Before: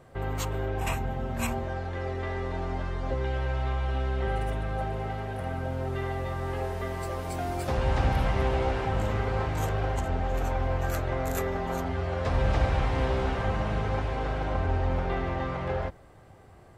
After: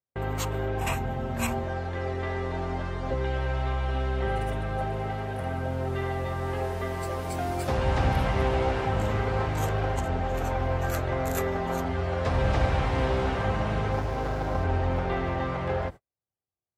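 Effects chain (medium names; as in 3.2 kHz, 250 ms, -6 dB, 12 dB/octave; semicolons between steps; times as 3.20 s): 13.92–14.64 s: median filter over 15 samples; gate -39 dBFS, range -47 dB; high-pass 56 Hz; trim +2 dB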